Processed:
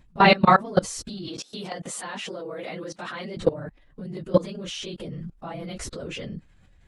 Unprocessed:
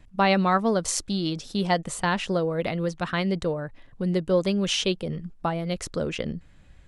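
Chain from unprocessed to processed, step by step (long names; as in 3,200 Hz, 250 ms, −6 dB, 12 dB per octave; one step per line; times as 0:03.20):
random phases in long frames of 50 ms
0:01.28–0:03.37: high-pass filter 290 Hz 12 dB per octave
output level in coarse steps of 21 dB
level +7.5 dB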